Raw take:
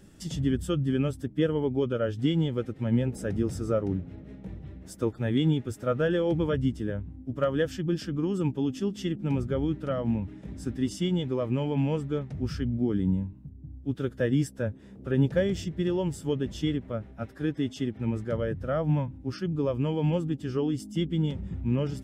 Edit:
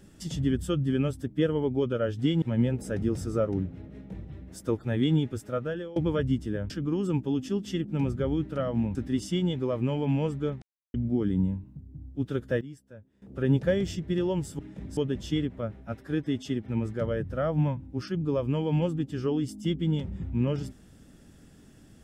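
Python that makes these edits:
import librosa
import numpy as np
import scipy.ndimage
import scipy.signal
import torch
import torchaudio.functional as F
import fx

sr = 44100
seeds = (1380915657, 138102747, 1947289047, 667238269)

y = fx.edit(x, sr, fx.cut(start_s=2.42, length_s=0.34),
    fx.fade_out_to(start_s=5.66, length_s=0.64, floor_db=-19.0),
    fx.cut(start_s=7.04, length_s=0.97),
    fx.move(start_s=10.26, length_s=0.38, to_s=16.28),
    fx.silence(start_s=12.31, length_s=0.32),
    fx.fade_down_up(start_s=14.16, length_s=0.89, db=-18.0, fade_s=0.14, curve='log'), tone=tone)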